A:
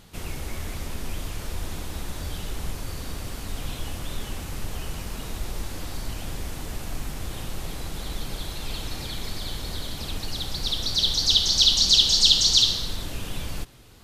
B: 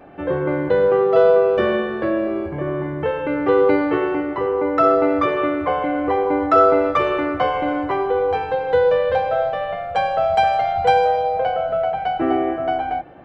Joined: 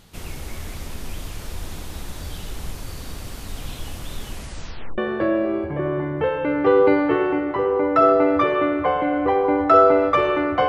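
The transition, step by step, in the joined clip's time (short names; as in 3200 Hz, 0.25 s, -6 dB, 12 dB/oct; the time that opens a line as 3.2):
A
4.31 tape stop 0.67 s
4.98 switch to B from 1.8 s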